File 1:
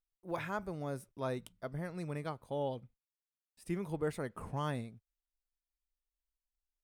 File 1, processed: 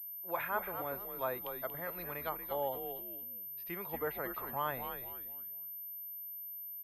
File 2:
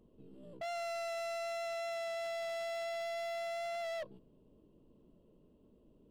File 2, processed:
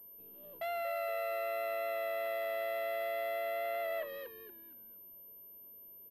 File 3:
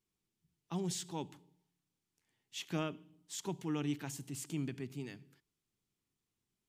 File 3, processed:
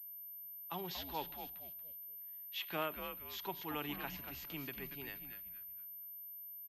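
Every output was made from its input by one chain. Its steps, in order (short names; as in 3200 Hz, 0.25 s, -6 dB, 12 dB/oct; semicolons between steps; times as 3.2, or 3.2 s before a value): three-band isolator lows -17 dB, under 530 Hz, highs -22 dB, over 5100 Hz; on a send: frequency-shifting echo 0.234 s, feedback 32%, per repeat -110 Hz, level -8 dB; on the sum: treble ducked by the level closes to 2700 Hz, closed at -38.5 dBFS; pulse-width modulation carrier 13000 Hz; gain +4.5 dB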